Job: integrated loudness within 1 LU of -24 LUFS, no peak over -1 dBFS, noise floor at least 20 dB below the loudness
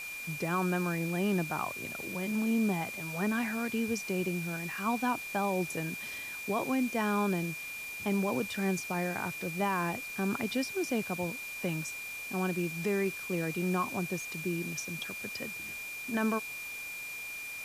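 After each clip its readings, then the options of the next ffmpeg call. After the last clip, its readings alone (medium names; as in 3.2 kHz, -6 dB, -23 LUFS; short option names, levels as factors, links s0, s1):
steady tone 2.4 kHz; tone level -39 dBFS; noise floor -41 dBFS; noise floor target -53 dBFS; loudness -33.0 LUFS; peak level -18.0 dBFS; loudness target -24.0 LUFS
-> -af "bandreject=f=2400:w=30"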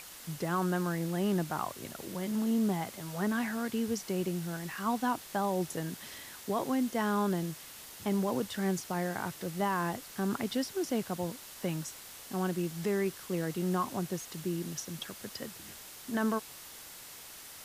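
steady tone not found; noise floor -49 dBFS; noise floor target -54 dBFS
-> -af "afftdn=nr=6:nf=-49"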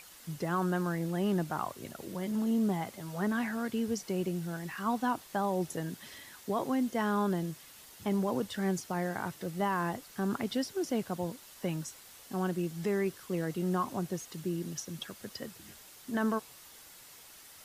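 noise floor -54 dBFS; loudness -34.0 LUFS; peak level -19.0 dBFS; loudness target -24.0 LUFS
-> -af "volume=3.16"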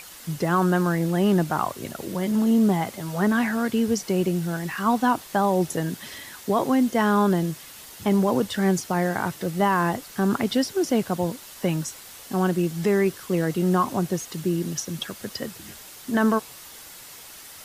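loudness -24.0 LUFS; peak level -9.0 dBFS; noise floor -44 dBFS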